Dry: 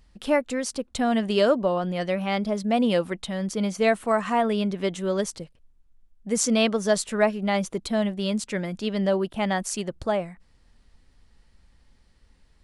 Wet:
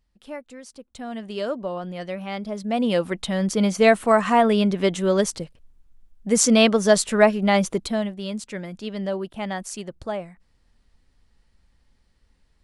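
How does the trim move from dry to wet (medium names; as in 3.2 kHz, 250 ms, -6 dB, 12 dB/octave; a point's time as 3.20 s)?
0.68 s -13.5 dB
1.77 s -5 dB
2.43 s -5 dB
3.33 s +5.5 dB
7.73 s +5.5 dB
8.14 s -4 dB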